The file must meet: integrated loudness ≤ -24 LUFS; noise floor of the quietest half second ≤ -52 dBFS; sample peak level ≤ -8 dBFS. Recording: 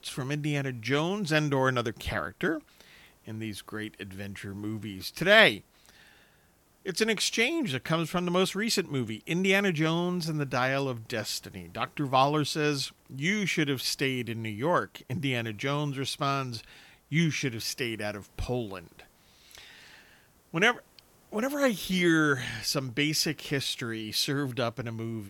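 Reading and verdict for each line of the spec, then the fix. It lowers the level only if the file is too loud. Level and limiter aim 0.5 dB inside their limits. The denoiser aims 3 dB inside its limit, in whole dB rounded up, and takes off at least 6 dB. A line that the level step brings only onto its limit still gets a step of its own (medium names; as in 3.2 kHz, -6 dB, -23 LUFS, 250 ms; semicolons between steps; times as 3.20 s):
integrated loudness -28.5 LUFS: pass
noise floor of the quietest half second -64 dBFS: pass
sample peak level -5.0 dBFS: fail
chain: peak limiter -8.5 dBFS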